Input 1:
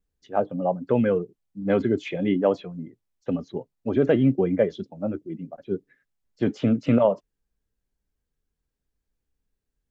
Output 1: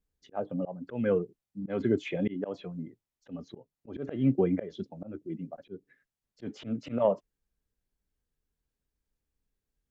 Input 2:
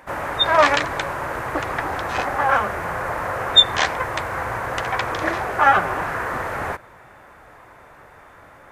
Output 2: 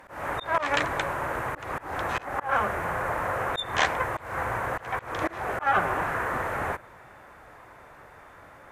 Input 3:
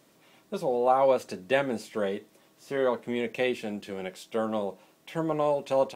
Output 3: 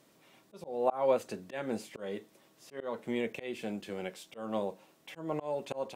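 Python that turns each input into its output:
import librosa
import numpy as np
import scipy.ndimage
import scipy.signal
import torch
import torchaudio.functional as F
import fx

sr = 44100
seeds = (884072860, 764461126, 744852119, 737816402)

y = fx.cheby_harmonics(x, sr, harmonics=(3, 5), levels_db=(-22, -44), full_scale_db=-1.0)
y = fx.auto_swell(y, sr, attack_ms=223.0)
y = fx.dynamic_eq(y, sr, hz=4800.0, q=1.8, threshold_db=-51.0, ratio=4.0, max_db=-6)
y = y * librosa.db_to_amplitude(-1.0)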